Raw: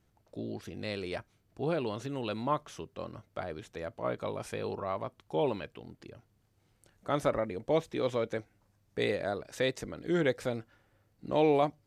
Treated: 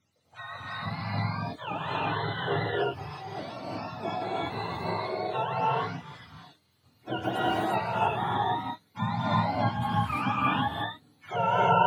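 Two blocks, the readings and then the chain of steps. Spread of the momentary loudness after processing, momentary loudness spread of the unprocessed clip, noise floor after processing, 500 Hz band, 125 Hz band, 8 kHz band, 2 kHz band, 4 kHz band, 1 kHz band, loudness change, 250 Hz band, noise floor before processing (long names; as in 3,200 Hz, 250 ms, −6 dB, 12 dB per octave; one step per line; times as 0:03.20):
11 LU, 13 LU, −68 dBFS, −1.5 dB, +8.0 dB, can't be measured, +7.5 dB, +6.5 dB, +11.0 dB, +4.0 dB, +2.0 dB, −72 dBFS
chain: frequency axis turned over on the octave scale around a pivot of 650 Hz
reverb whose tail is shaped and stops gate 380 ms rising, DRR −6 dB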